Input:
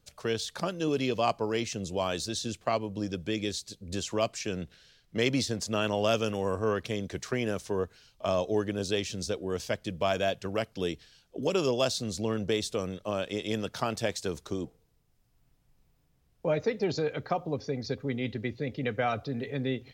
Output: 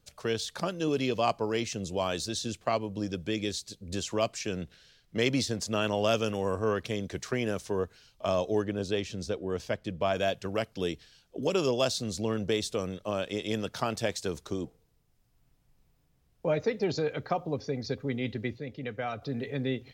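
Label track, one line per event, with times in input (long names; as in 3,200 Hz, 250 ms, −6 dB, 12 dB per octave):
8.620000	10.160000	high-shelf EQ 4,000 Hz −9.5 dB
18.580000	19.220000	clip gain −5.5 dB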